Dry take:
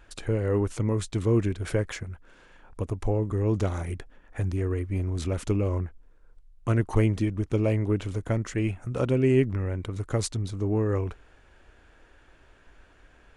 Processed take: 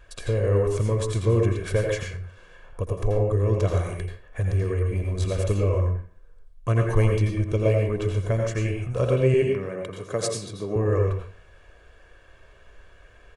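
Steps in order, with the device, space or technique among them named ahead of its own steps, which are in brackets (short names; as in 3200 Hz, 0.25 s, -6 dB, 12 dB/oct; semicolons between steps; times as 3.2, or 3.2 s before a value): 9.34–10.76 HPF 150 Hz 24 dB/oct; microphone above a desk (comb 1.8 ms, depth 58%; reverb RT60 0.45 s, pre-delay 80 ms, DRR 1.5 dB)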